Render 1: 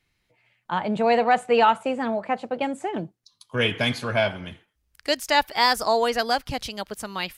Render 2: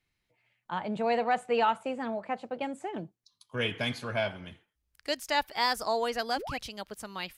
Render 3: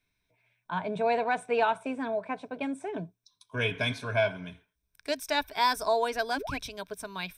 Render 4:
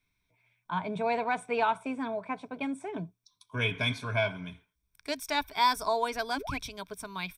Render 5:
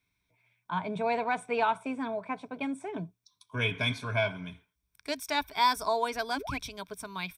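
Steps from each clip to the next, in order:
painted sound rise, 6.36–6.59, 240–2900 Hz -31 dBFS; gain -8 dB
ripple EQ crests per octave 1.6, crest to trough 11 dB
comb 0.9 ms, depth 35%; gain -1 dB
HPF 40 Hz

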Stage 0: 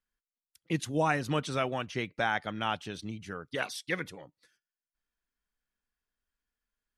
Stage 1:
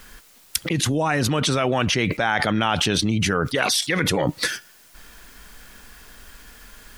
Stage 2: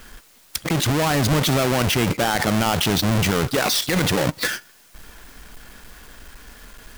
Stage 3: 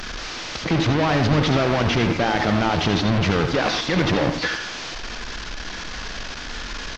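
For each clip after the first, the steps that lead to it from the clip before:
fast leveller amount 100%; gain +4 dB
half-waves squared off; in parallel at +0.5 dB: limiter -13 dBFS, peak gain reduction 11.5 dB; on the sum: gain -8 dB
delta modulation 32 kbps, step -25.5 dBFS; speakerphone echo 90 ms, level -10 dB; reverb RT60 0.20 s, pre-delay 68 ms, DRR 8 dB

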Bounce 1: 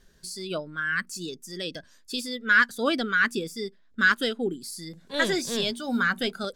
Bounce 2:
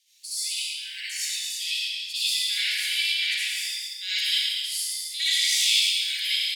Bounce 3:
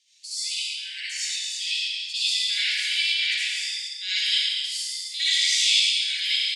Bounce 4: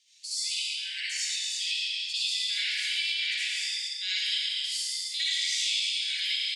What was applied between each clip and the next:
steep high-pass 2200 Hz 72 dB/oct; loudspeakers at several distances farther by 38 m -5 dB, 84 m -7 dB; reverb RT60 1.3 s, pre-delay 56 ms, DRR -10.5 dB
LPF 8200 Hz 24 dB/oct; gain +1.5 dB
compressor 3:1, threshold -28 dBFS, peak gain reduction 9.5 dB

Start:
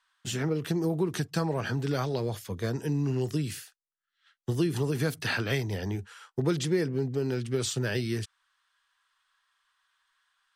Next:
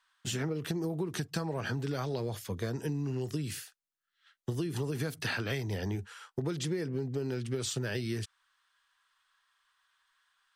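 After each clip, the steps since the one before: compressor, threshold -30 dBFS, peak gain reduction 9 dB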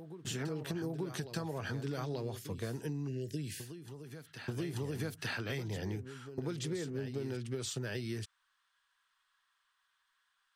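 spectral delete 3.08–3.65, 650–1500 Hz; reverse echo 0.884 s -10 dB; gain -4.5 dB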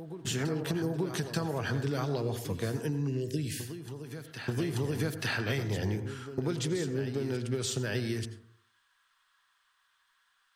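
plate-style reverb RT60 0.6 s, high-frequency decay 0.3×, pre-delay 75 ms, DRR 11 dB; gain +6 dB

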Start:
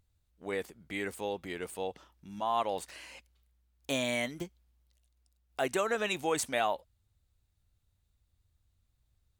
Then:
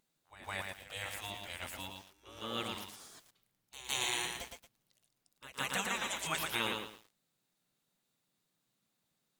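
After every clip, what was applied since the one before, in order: reverse echo 0.16 s -14.5 dB; spectral gate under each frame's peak -15 dB weak; lo-fi delay 0.114 s, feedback 35%, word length 10-bit, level -3.5 dB; gain +3.5 dB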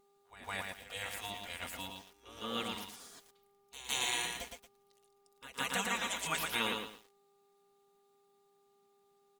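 comb 4.2 ms, depth 41%; buzz 400 Hz, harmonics 3, -71 dBFS -6 dB/oct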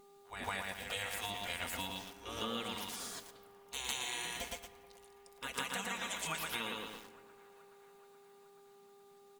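compressor 12:1, threshold -45 dBFS, peak gain reduction 16.5 dB; band-limited delay 0.426 s, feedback 67%, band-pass 950 Hz, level -21 dB; on a send at -13 dB: reverb RT60 1.3 s, pre-delay 5 ms; on the sum: gain +9 dB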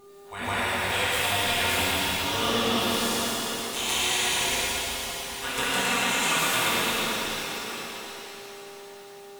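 reverse delay 0.597 s, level -13.5 dB; shimmer reverb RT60 3.9 s, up +7 st, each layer -8 dB, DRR -8.5 dB; gain +6 dB

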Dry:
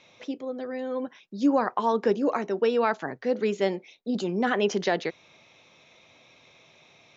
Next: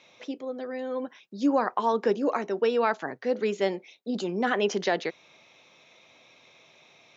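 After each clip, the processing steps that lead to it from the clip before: HPF 210 Hz 6 dB/oct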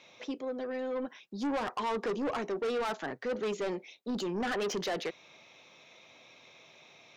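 soft clip -29 dBFS, distortion -6 dB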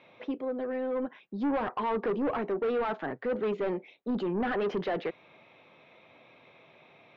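air absorption 480 m; gain +4.5 dB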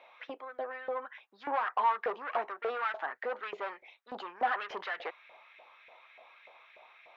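LFO high-pass saw up 3.4 Hz 620–2000 Hz; gain -1.5 dB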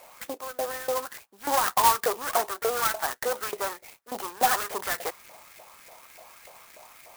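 clock jitter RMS 0.082 ms; gain +7.5 dB

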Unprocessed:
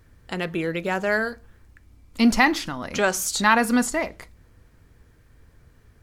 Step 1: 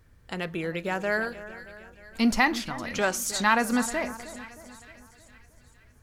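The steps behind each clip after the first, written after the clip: bell 310 Hz -2.5 dB 0.71 oct; split-band echo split 1700 Hz, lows 0.312 s, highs 0.46 s, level -14.5 dB; gain -4 dB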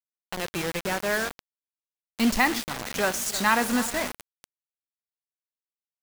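on a send at -18 dB: reverb RT60 0.75 s, pre-delay 42 ms; on the sum: bit-crush 5-bit

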